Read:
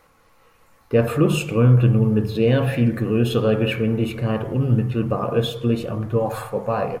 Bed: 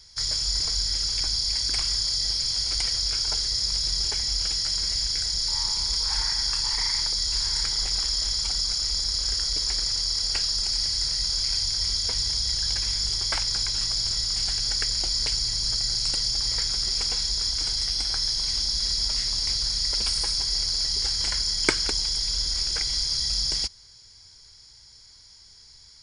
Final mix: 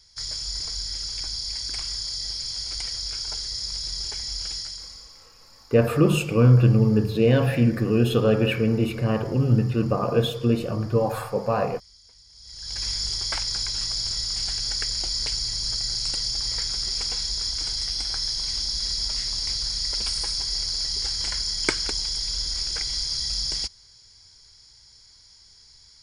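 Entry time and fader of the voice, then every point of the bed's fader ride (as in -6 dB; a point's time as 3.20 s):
4.80 s, -1.0 dB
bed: 4.57 s -5 dB
5.31 s -27 dB
12.29 s -27 dB
12.83 s -1.5 dB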